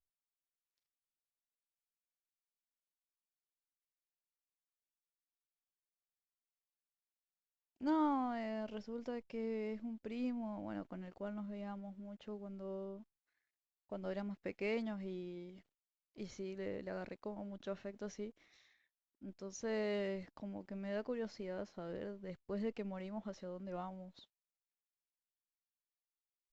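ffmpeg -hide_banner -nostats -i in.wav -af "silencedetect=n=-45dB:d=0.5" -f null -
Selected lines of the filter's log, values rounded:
silence_start: 0.00
silence_end: 7.81 | silence_duration: 7.81
silence_start: 12.97
silence_end: 13.92 | silence_duration: 0.95
silence_start: 15.49
silence_end: 16.18 | silence_duration: 0.69
silence_start: 18.30
silence_end: 19.23 | silence_duration: 0.94
silence_start: 24.04
silence_end: 26.52 | silence_duration: 2.49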